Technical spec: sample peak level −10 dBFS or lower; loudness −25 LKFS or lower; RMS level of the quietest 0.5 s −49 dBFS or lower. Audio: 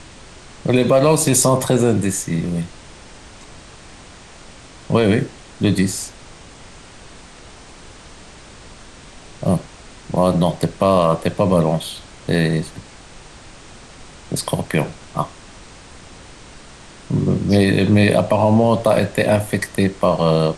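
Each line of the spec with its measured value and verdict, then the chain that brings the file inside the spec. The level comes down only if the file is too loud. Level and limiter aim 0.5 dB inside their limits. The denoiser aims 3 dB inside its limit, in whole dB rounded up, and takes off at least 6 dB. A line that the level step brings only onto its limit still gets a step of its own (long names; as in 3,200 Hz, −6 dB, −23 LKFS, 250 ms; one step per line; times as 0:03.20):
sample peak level −4.0 dBFS: out of spec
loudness −18.0 LKFS: out of spec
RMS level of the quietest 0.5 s −41 dBFS: out of spec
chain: broadband denoise 6 dB, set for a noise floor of −41 dBFS
level −7.5 dB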